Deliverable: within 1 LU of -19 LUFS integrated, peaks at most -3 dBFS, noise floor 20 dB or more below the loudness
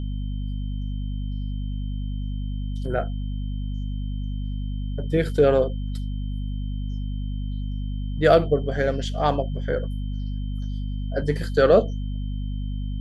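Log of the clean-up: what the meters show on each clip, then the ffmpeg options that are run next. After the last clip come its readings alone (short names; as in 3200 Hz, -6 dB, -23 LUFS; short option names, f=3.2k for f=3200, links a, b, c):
hum 50 Hz; harmonics up to 250 Hz; hum level -25 dBFS; steady tone 3100 Hz; tone level -51 dBFS; loudness -26.0 LUFS; peak -3.5 dBFS; loudness target -19.0 LUFS
-> -af "bandreject=f=50:t=h:w=4,bandreject=f=100:t=h:w=4,bandreject=f=150:t=h:w=4,bandreject=f=200:t=h:w=4,bandreject=f=250:t=h:w=4"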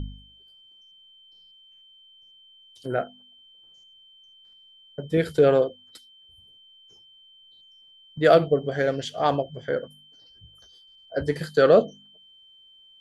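hum none; steady tone 3100 Hz; tone level -51 dBFS
-> -af "bandreject=f=3.1k:w=30"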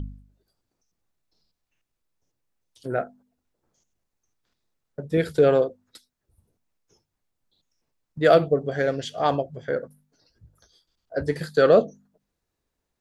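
steady tone none; loudness -22.5 LUFS; peak -4.5 dBFS; loudness target -19.0 LUFS
-> -af "volume=3.5dB,alimiter=limit=-3dB:level=0:latency=1"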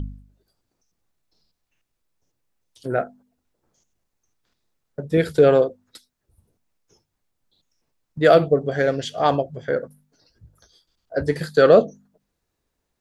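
loudness -19.5 LUFS; peak -3.0 dBFS; noise floor -78 dBFS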